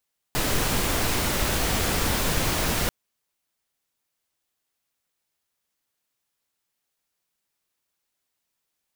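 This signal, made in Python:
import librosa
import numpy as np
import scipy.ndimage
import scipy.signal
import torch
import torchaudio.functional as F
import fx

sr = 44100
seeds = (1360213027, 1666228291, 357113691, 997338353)

y = fx.noise_colour(sr, seeds[0], length_s=2.54, colour='pink', level_db=-24.0)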